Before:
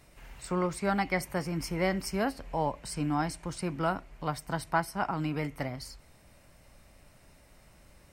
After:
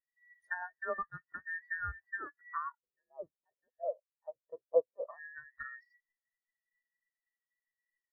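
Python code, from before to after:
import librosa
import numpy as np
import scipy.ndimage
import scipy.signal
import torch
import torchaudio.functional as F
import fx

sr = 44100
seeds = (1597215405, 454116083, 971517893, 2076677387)

y = fx.band_invert(x, sr, width_hz=2000)
y = fx.env_lowpass_down(y, sr, base_hz=970.0, full_db=-27.5)
y = fx.curve_eq(y, sr, hz=(290.0, 570.0, 830.0, 1500.0), db=(0, 3, -4, -20), at=(2.78, 5.07))
y = fx.spectral_expand(y, sr, expansion=2.5)
y = y * librosa.db_to_amplitude(3.5)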